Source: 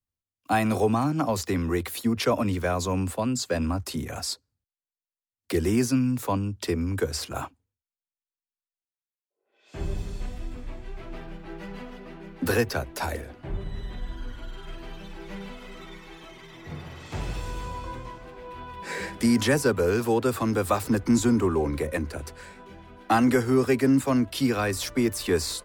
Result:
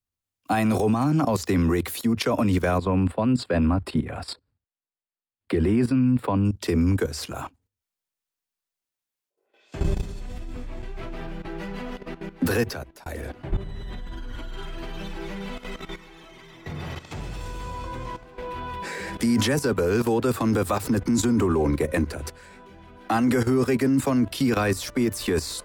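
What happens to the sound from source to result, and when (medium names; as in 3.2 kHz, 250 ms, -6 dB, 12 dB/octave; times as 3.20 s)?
2.78–6.45 s: boxcar filter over 7 samples
12.45–13.06 s: fade out
whole clip: dynamic bell 190 Hz, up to +3 dB, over -35 dBFS, Q 0.87; level held to a coarse grid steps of 14 dB; peak limiter -22.5 dBFS; trim +9 dB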